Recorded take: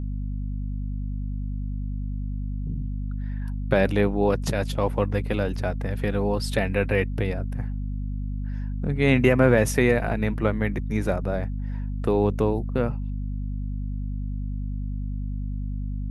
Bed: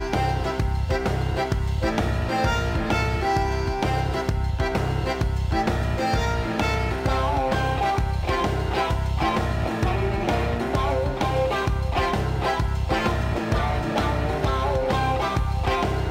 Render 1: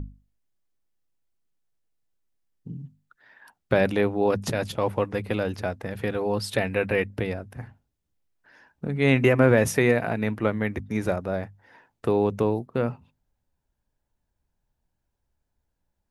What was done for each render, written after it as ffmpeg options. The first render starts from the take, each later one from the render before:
-af "bandreject=f=50:t=h:w=6,bandreject=f=100:t=h:w=6,bandreject=f=150:t=h:w=6,bandreject=f=200:t=h:w=6,bandreject=f=250:t=h:w=6"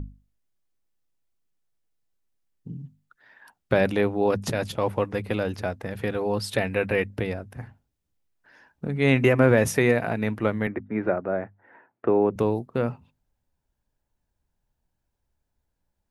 -filter_complex "[0:a]asettb=1/sr,asplit=3[a][b][c];[a]atrim=end=10.674[d];[b]atrim=start=10.67:end=12.36,asetpts=PTS-STARTPTS,afade=t=in:d=0.004:c=qsin,afade=t=out:st=1.686:d=0.004:c=qsin,highpass=f=120:w=0.5412,highpass=f=120:w=1.3066,equalizer=f=150:t=q:w=4:g=-9,equalizer=f=350:t=q:w=4:g=5,equalizer=f=650:t=q:w=4:g=3,equalizer=f=1.4k:t=q:w=4:g=3,lowpass=f=2.2k:w=0.5412,lowpass=f=2.2k:w=1.3066[e];[c]atrim=start=12.356[f];[d][e]acrossfade=d=0.004:c1=hsin:c2=qsin[g];[g][f]acrossfade=d=0.004:c1=qsin:c2=hsin"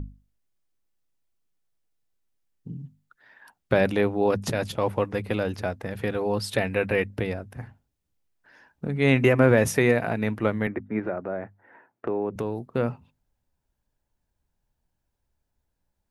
-filter_complex "[0:a]asettb=1/sr,asplit=3[a][b][c];[a]atrim=end=10.994[d];[b]atrim=start=10.99:end=12.7,asetpts=PTS-STARTPTS,afade=t=in:d=0.004:c=qsin,afade=t=out:st=1.706:d=0.004:c=qsin,acompressor=threshold=-28dB:ratio=2:attack=3.2:release=140:knee=1:detection=peak[e];[c]atrim=start=12.696[f];[d][e]acrossfade=d=0.004:c1=hsin:c2=qsin[g];[g][f]acrossfade=d=0.004:c1=qsin:c2=hsin"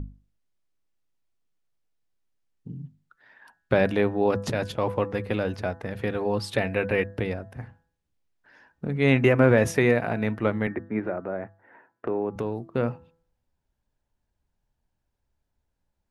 -af "highshelf=f=8.8k:g=-11,bandreject=f=166.2:t=h:w=4,bandreject=f=332.4:t=h:w=4,bandreject=f=498.6:t=h:w=4,bandreject=f=664.8:t=h:w=4,bandreject=f=831:t=h:w=4,bandreject=f=997.2:t=h:w=4,bandreject=f=1.1634k:t=h:w=4,bandreject=f=1.3296k:t=h:w=4,bandreject=f=1.4958k:t=h:w=4,bandreject=f=1.662k:t=h:w=4,bandreject=f=1.8282k:t=h:w=4"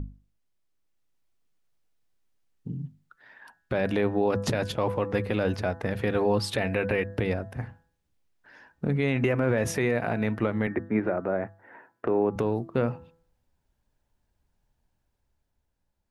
-af "dynaudnorm=f=120:g=17:m=4dB,alimiter=limit=-14.5dB:level=0:latency=1:release=124"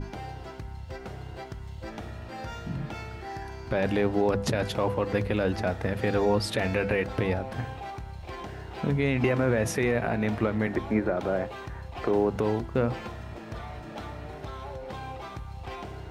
-filter_complex "[1:a]volume=-15.5dB[a];[0:a][a]amix=inputs=2:normalize=0"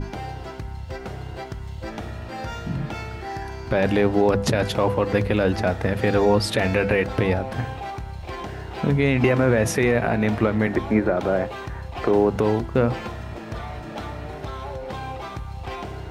-af "volume=6dB"

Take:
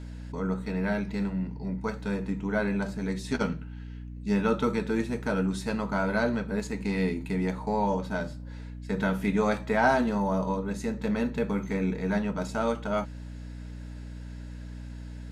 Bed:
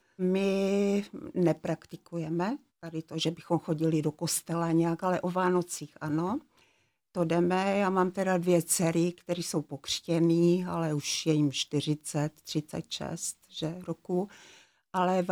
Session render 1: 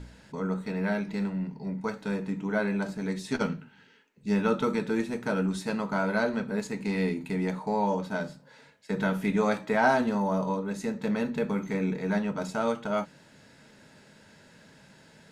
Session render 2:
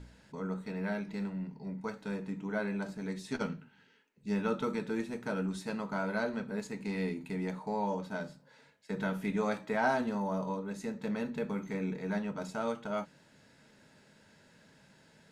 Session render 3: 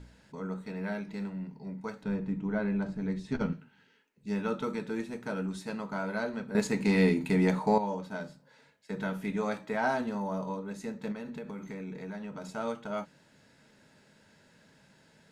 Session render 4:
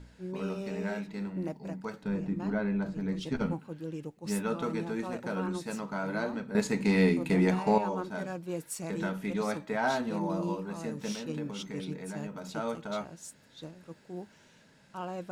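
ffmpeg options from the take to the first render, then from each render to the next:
-af "bandreject=f=60:t=h:w=4,bandreject=f=120:t=h:w=4,bandreject=f=180:t=h:w=4,bandreject=f=240:t=h:w=4,bandreject=f=300:t=h:w=4"
-af "volume=-6.5dB"
-filter_complex "[0:a]asettb=1/sr,asplit=3[a][b][c];[a]atrim=end=2.034[d];[b]atrim=start=2.03:end=3.53,asetpts=PTS-STARTPTS,afade=t=in:d=0.004:c=qsin,afade=t=out:st=1.496:d=0.004:c=qsin,aemphasis=mode=reproduction:type=bsi[e];[c]atrim=start=3.526[f];[d][e]acrossfade=d=0.004:c1=hsin:c2=qsin[g];[g][f]acrossfade=d=0.004:c1=qsin:c2=hsin,asettb=1/sr,asplit=3[h][i][j];[h]atrim=end=11.124[k];[i]atrim=start=11.12:end=12.56,asetpts=PTS-STARTPTS,afade=t=in:d=0.004:c=qsin,afade=t=out:st=1.436:d=0.004:c=qsin,acompressor=threshold=-36dB:ratio=6:attack=3.2:release=140:knee=1:detection=peak[l];[j]atrim=start=12.556[m];[k][l]acrossfade=d=0.004:c1=hsin:c2=qsin[n];[n][m]acrossfade=d=0.004:c1=qsin:c2=hsin,asplit=3[o][p][q];[o]atrim=end=6.552[r];[p]atrim=start=6.548:end=7.782,asetpts=PTS-STARTPTS,volume=10.5dB[s];[q]atrim=start=7.778[t];[r][s]acrossfade=d=0.004:c1=hsin:c2=hsin[u];[u][t]acrossfade=d=0.004:c1=hsin:c2=hsin"
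-filter_complex "[1:a]volume=-11.5dB[a];[0:a][a]amix=inputs=2:normalize=0"

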